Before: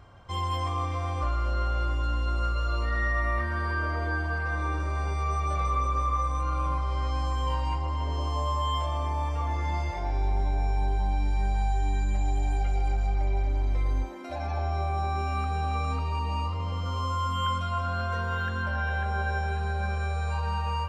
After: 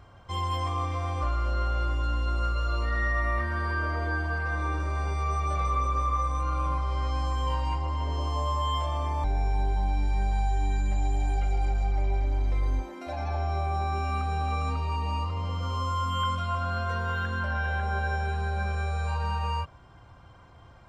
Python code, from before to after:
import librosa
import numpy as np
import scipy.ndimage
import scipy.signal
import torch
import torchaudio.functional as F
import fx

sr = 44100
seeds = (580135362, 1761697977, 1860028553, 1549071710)

y = fx.edit(x, sr, fx.cut(start_s=9.24, length_s=1.23), tone=tone)